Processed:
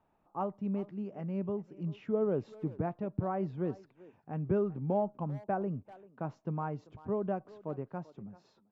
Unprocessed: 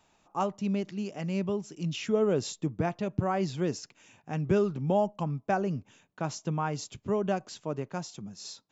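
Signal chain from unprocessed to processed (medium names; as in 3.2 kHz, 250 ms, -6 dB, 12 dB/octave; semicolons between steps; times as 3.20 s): low-pass 1.2 kHz 12 dB/octave; speakerphone echo 390 ms, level -18 dB; trim -4.5 dB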